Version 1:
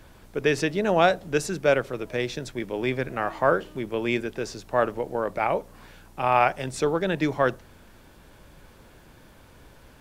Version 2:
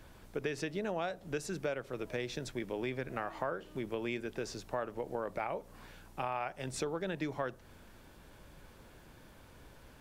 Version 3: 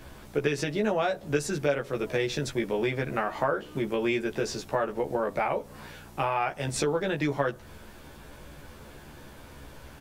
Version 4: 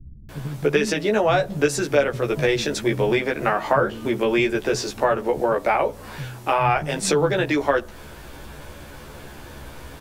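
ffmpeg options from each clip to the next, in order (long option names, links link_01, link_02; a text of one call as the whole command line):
ffmpeg -i in.wav -af "acompressor=threshold=-28dB:ratio=6,volume=-5dB" out.wav
ffmpeg -i in.wav -filter_complex "[0:a]asplit=2[link_01][link_02];[link_02]adelay=14,volume=-2.5dB[link_03];[link_01][link_03]amix=inputs=2:normalize=0,volume=7.5dB" out.wav
ffmpeg -i in.wav -filter_complex "[0:a]acrossover=split=200[link_01][link_02];[link_02]adelay=290[link_03];[link_01][link_03]amix=inputs=2:normalize=0,volume=8dB" out.wav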